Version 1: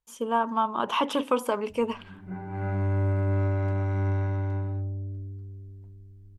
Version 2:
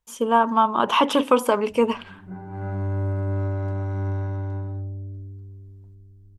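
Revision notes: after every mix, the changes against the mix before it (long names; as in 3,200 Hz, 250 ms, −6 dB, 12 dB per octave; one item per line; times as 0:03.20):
speech +7.0 dB
background: add parametric band 2,300 Hz −8.5 dB 0.71 octaves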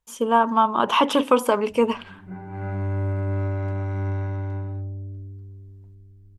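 background: add parametric band 2,300 Hz +8.5 dB 0.71 octaves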